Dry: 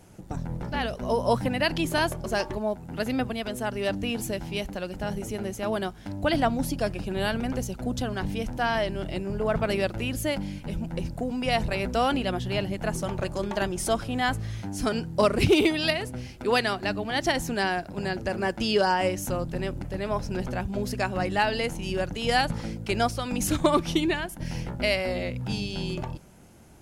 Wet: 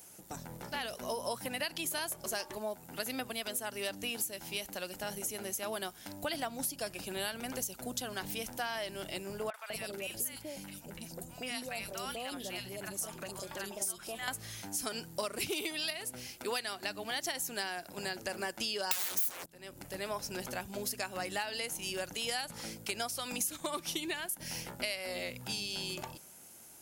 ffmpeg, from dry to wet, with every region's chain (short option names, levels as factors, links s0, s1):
-filter_complex "[0:a]asettb=1/sr,asplit=3[s0][s1][s2];[s0]atrim=end=9.504[s3];[s1]atrim=start=9.5:end=14.28,asetpts=PTS-STARTPTS,afade=t=in:d=0.004:c=qsin,afade=t=out:st=4.776:d=0.004:c=qsin,acompressor=threshold=0.0316:ratio=2.5:attack=3.2:release=140:knee=1:detection=peak,acrossover=split=800|3400[s4][s5][s6];[s6]adelay=40[s7];[s4]adelay=200[s8];[s8][s5][s7]amix=inputs=3:normalize=0,atrim=end_sample=210798[s9];[s2]atrim=start=14.276[s10];[s3][s9]acrossfade=d=0.004:c1=hsin:c2=qsin[s11];[s11][s10]acrossfade=d=0.004:c1=qsin:c2=hsin,asettb=1/sr,asplit=3[s12][s13][s14];[s12]atrim=end=18.914[s15];[s13]atrim=start=18.91:end=19.46,asetpts=PTS-STARTPTS,afade=t=in:d=0.004:c=qsin,afade=t=out:st=0.546:d=0.004:c=qsin,highshelf=f=5000:g=9,bandreject=f=60:t=h:w=6,bandreject=f=120:t=h:w=6,bandreject=f=180:t=h:w=6,bandreject=f=240:t=h:w=6,aeval=exprs='0.266*sin(PI/2*8.91*val(0)/0.266)':c=same[s16];[s14]atrim=start=19.456[s17];[s15][s16]acrossfade=d=0.004:c1=hsin:c2=qsin[s18];[s18][s17]acrossfade=d=0.004:c1=qsin:c2=hsin,aemphasis=mode=production:type=riaa,acompressor=threshold=0.0398:ratio=6,volume=0.562"